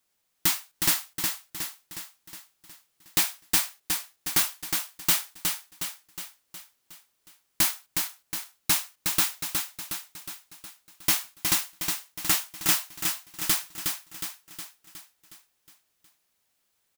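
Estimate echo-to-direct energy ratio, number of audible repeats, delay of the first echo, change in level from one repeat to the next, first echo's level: −3.5 dB, 6, 364 ms, −5.5 dB, −5.0 dB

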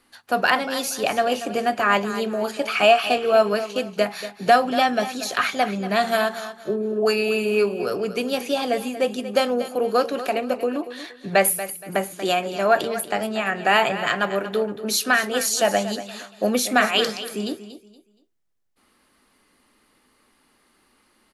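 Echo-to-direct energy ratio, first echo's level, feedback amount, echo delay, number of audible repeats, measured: −12.5 dB, −13.0 dB, 28%, 235 ms, 2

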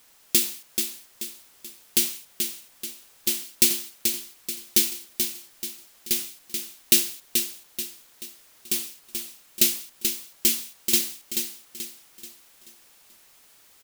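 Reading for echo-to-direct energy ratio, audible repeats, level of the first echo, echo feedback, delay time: −5.0 dB, 4, −6.0 dB, 41%, 433 ms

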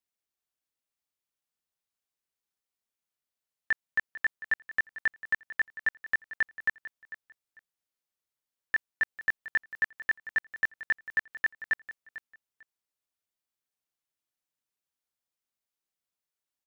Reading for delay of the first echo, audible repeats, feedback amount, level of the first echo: 447 ms, 2, 20%, −15.5 dB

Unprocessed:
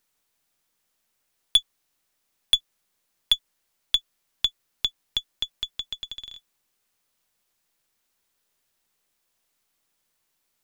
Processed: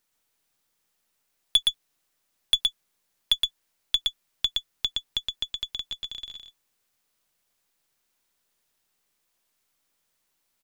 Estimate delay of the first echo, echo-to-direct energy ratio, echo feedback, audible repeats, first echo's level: 118 ms, −3.0 dB, repeats not evenly spaced, 1, −3.0 dB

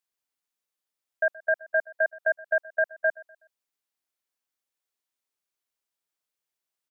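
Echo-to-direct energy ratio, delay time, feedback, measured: −21.0 dB, 124 ms, 39%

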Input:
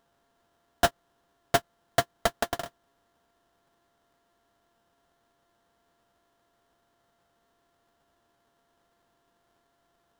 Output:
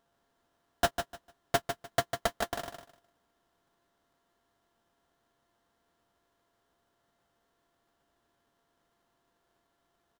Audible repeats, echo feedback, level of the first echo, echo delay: 3, 21%, −7.5 dB, 150 ms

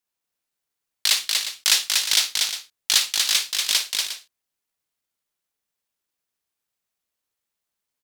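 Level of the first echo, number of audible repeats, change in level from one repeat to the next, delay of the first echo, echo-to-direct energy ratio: −15.0 dB, 3, repeats not evenly spaced, 55 ms, −2.5 dB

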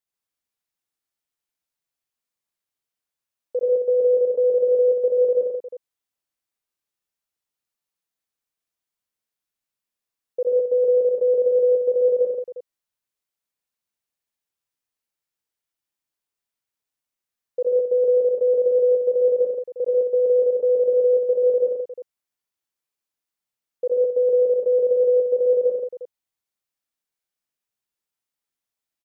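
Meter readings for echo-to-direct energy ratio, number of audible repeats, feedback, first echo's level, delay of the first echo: 0.5 dB, 4, repeats not evenly spaced, −5.0 dB, 64 ms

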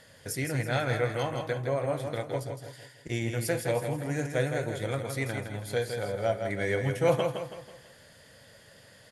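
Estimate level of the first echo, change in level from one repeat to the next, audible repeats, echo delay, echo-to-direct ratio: −6.5 dB, −7.5 dB, 4, 163 ms, −5.5 dB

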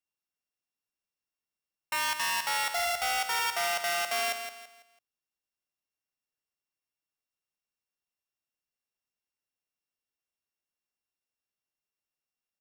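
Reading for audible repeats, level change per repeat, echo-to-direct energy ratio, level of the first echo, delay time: 3, −9.5 dB, −8.0 dB, −8.5 dB, 166 ms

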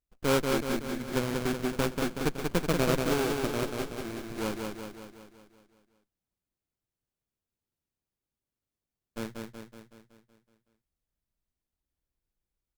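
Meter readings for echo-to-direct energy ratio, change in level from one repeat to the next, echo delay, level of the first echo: −2.5 dB, −5.0 dB, 187 ms, −4.0 dB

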